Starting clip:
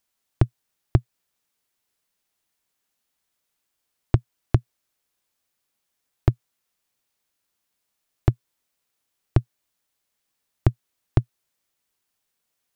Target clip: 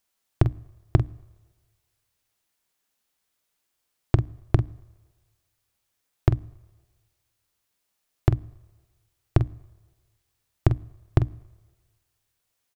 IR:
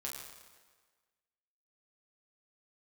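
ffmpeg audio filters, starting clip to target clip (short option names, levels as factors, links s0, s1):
-filter_complex "[0:a]bandreject=f=60:t=h:w=6,bandreject=f=120:t=h:w=6,bandreject=f=180:t=h:w=6,bandreject=f=240:t=h:w=6,bandreject=f=300:t=h:w=6,asplit=2[s0][s1];[s1]adelay=46,volume=0.282[s2];[s0][s2]amix=inputs=2:normalize=0,asplit=2[s3][s4];[1:a]atrim=start_sample=2205,lowshelf=f=110:g=10[s5];[s4][s5]afir=irnorm=-1:irlink=0,volume=0.0794[s6];[s3][s6]amix=inputs=2:normalize=0"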